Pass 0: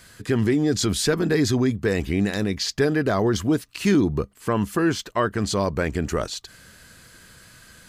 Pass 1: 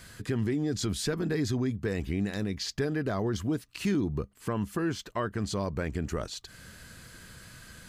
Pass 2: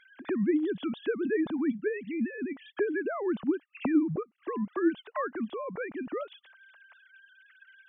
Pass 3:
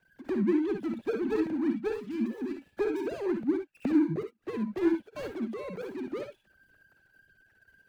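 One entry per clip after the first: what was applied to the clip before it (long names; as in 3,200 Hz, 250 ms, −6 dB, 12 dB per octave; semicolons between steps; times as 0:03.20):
bass and treble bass +4 dB, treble −1 dB; downward compressor 1.5 to 1, threshold −42 dBFS, peak gain reduction 10.5 dB; level −1 dB
three sine waves on the formant tracks
running median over 41 samples; convolution reverb, pre-delay 48 ms, DRR 4.5 dB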